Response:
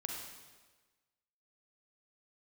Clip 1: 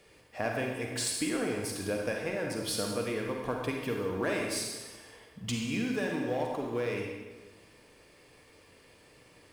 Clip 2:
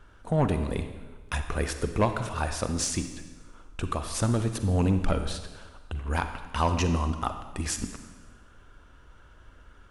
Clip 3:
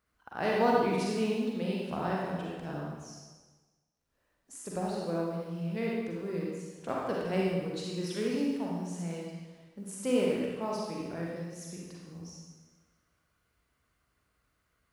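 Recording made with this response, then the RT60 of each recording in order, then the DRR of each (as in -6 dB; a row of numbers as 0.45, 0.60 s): 1; 1.3, 1.3, 1.3 s; 0.0, 8.0, -4.0 dB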